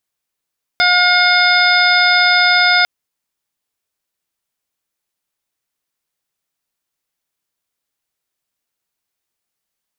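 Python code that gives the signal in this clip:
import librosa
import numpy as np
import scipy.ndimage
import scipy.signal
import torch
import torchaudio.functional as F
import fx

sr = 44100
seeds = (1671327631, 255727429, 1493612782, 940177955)

y = fx.additive_steady(sr, length_s=2.05, hz=717.0, level_db=-17.0, upper_db=(3.5, 2.0, -17.5, -1.0, -9.5, 0))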